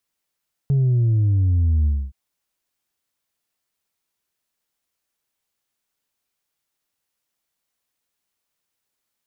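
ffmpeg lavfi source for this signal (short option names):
-f lavfi -i "aevalsrc='0.178*clip((1.42-t)/0.26,0,1)*tanh(1.26*sin(2*PI*140*1.42/log(65/140)*(exp(log(65/140)*t/1.42)-1)))/tanh(1.26)':d=1.42:s=44100"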